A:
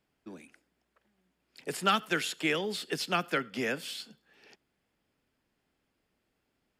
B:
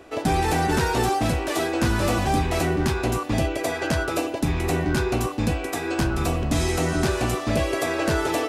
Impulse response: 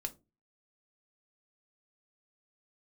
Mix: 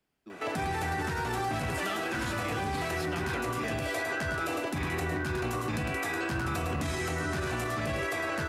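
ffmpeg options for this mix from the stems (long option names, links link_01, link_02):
-filter_complex "[0:a]volume=-6dB,asplit=4[link_01][link_02][link_03][link_04];[link_02]volume=-4.5dB[link_05];[link_03]volume=-9dB[link_06];[1:a]highpass=frequency=84:width=0.5412,highpass=frequency=84:width=1.3066,equalizer=frequency=1600:width=0.74:gain=10,adelay=300,volume=-4.5dB,asplit=3[link_07][link_08][link_09];[link_08]volume=-4.5dB[link_10];[link_09]volume=-4dB[link_11];[link_04]apad=whole_len=387611[link_12];[link_07][link_12]sidechaincompress=threshold=-51dB:ratio=8:attack=5.5:release=409[link_13];[2:a]atrim=start_sample=2205[link_14];[link_05][link_10]amix=inputs=2:normalize=0[link_15];[link_15][link_14]afir=irnorm=-1:irlink=0[link_16];[link_06][link_11]amix=inputs=2:normalize=0,aecho=0:1:105:1[link_17];[link_01][link_13][link_16][link_17]amix=inputs=4:normalize=0,highshelf=frequency=7900:gain=4,acrossover=split=140[link_18][link_19];[link_19]acompressor=threshold=-28dB:ratio=5[link_20];[link_18][link_20]amix=inputs=2:normalize=0,alimiter=limit=-23.5dB:level=0:latency=1:release=22"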